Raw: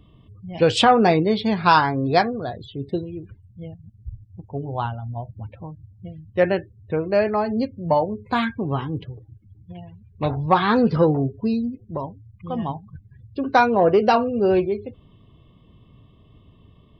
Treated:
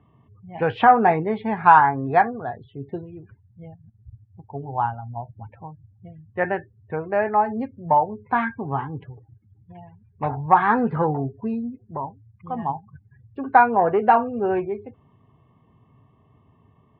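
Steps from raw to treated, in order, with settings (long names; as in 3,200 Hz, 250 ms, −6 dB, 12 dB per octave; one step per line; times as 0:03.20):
loudspeaker in its box 120–2,100 Hz, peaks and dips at 190 Hz −6 dB, 320 Hz −7 dB, 540 Hz −7 dB, 840 Hz +9 dB, 1,700 Hz +4 dB
level −1 dB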